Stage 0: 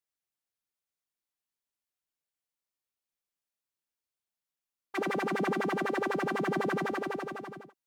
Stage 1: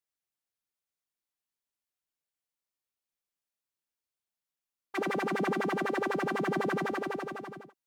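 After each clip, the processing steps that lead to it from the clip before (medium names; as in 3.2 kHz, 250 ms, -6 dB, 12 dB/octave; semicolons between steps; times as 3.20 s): no audible change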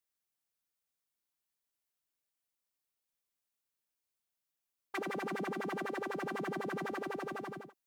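treble shelf 10 kHz +5 dB; compression, threshold -35 dBFS, peak gain reduction 9 dB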